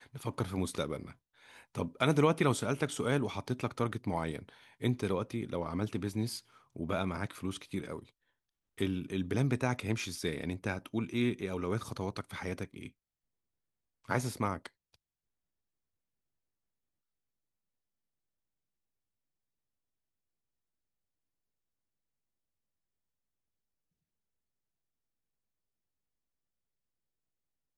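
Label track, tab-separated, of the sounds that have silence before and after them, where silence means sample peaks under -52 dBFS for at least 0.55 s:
8.780000	12.890000	sound
14.040000	14.940000	sound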